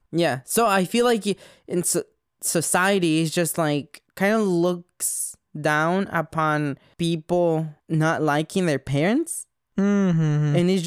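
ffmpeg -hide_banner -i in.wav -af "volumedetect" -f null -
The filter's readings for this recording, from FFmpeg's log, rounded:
mean_volume: -22.4 dB
max_volume: -7.1 dB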